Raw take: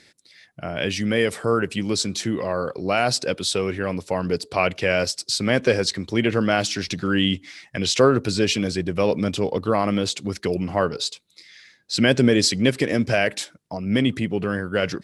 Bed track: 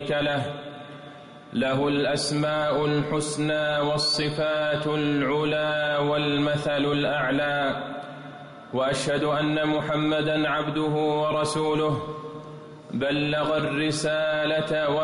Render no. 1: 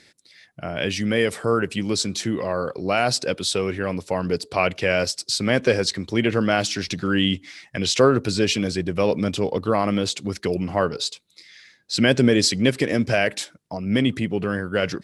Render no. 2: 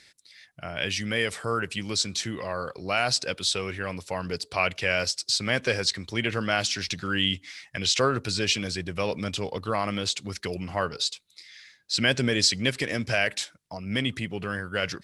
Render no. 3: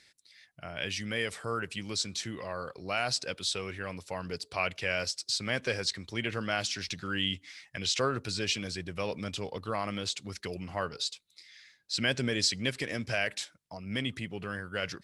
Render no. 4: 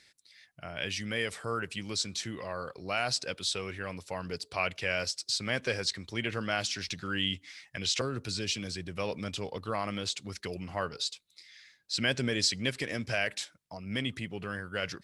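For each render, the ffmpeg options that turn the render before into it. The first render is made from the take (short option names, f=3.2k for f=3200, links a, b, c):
-af anull
-filter_complex "[0:a]acrossover=split=8700[a][b];[b]acompressor=threshold=-47dB:ratio=4:attack=1:release=60[c];[a][c]amix=inputs=2:normalize=0,equalizer=f=300:w=0.41:g=-10.5"
-af "volume=-6dB"
-filter_complex "[0:a]asettb=1/sr,asplit=3[a][b][c];[a]atrim=end=8.014[d];[b]atrim=start=8.01:end=8.97,asetpts=PTS-STARTPTS,afade=t=in:d=0.004:c=qsin,afade=t=out:st=0.956:d=0.004:c=qsin,acrossover=split=390|3000[e][f][g];[f]acompressor=threshold=-45dB:ratio=2:attack=3.2:release=140:knee=2.83:detection=peak[h];[e][h][g]amix=inputs=3:normalize=0[i];[c]atrim=start=8.966[j];[d][i]acrossfade=d=0.004:c1=hsin:c2=qsin[k];[k][j]acrossfade=d=0.004:c1=qsin:c2=hsin"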